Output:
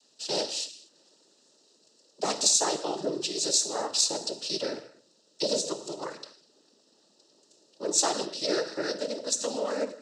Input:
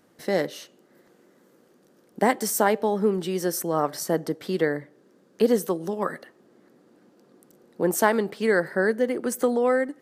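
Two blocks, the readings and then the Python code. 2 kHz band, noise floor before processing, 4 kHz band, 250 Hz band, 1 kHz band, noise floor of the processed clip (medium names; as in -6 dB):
-12.0 dB, -60 dBFS, +11.0 dB, -10.5 dB, -7.5 dB, -65 dBFS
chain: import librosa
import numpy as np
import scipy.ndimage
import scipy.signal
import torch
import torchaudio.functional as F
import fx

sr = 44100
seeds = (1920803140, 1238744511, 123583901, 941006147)

y = scipy.signal.sosfilt(scipy.signal.butter(2, 340.0, 'highpass', fs=sr, output='sos'), x)
y = fx.high_shelf_res(y, sr, hz=3100.0, db=13.0, q=3.0)
y = fx.rev_gated(y, sr, seeds[0], gate_ms=270, shape='falling', drr_db=8.0)
y = fx.noise_vocoder(y, sr, seeds[1], bands=12)
y = y * 10.0 ** (-6.5 / 20.0)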